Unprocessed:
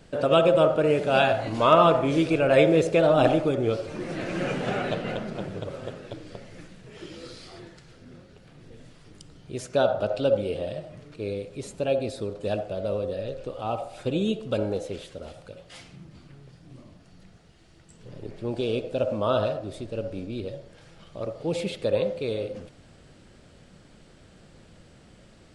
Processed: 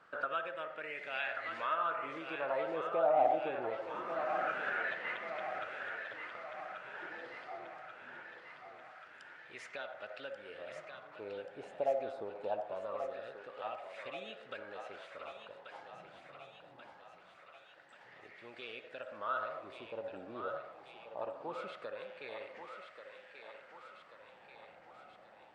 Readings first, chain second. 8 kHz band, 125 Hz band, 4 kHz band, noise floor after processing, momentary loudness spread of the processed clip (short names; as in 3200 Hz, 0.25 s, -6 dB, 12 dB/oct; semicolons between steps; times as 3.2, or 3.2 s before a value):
under -20 dB, -30.5 dB, -16.0 dB, -59 dBFS, 21 LU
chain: compressor 3:1, threshold -29 dBFS, peak gain reduction 13 dB; wah 0.23 Hz 750–2000 Hz, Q 5.8; on a send: thinning echo 1.135 s, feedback 66%, high-pass 530 Hz, level -6.5 dB; on the sum: gain +8.5 dB